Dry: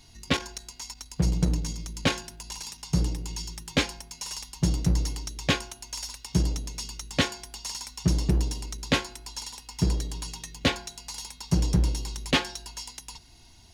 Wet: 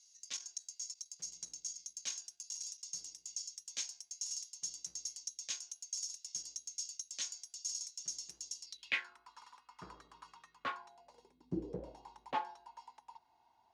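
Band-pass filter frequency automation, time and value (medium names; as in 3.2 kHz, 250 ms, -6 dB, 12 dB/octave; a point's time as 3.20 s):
band-pass filter, Q 5.4
8.61 s 6.3 kHz
9.14 s 1.2 kHz
10.74 s 1.2 kHz
11.47 s 270 Hz
12.05 s 880 Hz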